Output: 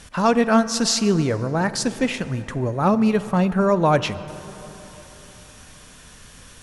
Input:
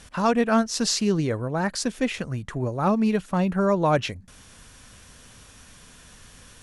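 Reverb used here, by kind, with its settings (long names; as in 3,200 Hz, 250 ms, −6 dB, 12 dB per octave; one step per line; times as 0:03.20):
dense smooth reverb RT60 3.8 s, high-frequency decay 0.45×, DRR 13 dB
level +3.5 dB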